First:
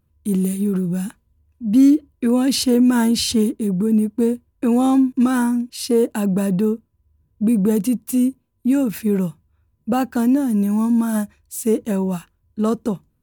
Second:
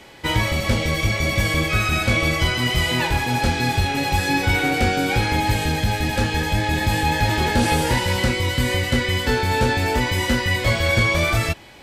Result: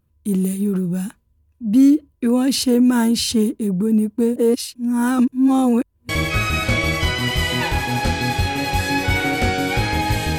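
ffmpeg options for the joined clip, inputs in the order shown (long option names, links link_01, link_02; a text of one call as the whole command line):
ffmpeg -i cue0.wav -i cue1.wav -filter_complex "[0:a]apad=whole_dur=10.38,atrim=end=10.38,asplit=2[link_01][link_02];[link_01]atrim=end=4.362[link_03];[link_02]atrim=start=4.358:end=6.092,asetpts=PTS-STARTPTS,areverse[link_04];[1:a]atrim=start=1.478:end=5.77[link_05];[link_03][link_04]acrossfade=duration=0.004:curve1=hsin:curve2=hsin[link_06];[link_06][link_05]acrossfade=duration=0.004:curve1=hsin:curve2=hsin" out.wav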